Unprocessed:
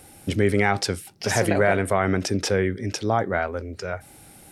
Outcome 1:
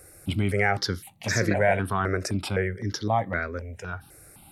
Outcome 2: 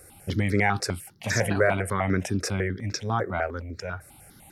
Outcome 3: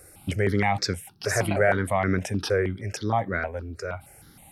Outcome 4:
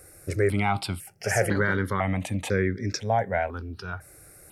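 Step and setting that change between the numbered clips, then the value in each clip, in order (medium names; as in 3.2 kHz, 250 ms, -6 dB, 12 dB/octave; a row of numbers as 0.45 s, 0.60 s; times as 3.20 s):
stepped phaser, rate: 3.9 Hz, 10 Hz, 6.4 Hz, 2 Hz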